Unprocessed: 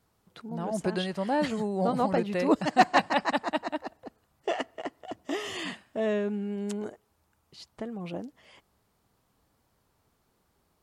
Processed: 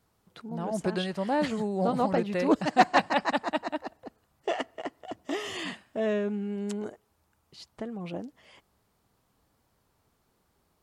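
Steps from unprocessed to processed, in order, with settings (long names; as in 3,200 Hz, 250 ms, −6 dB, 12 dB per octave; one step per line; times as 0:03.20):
highs frequency-modulated by the lows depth 0.11 ms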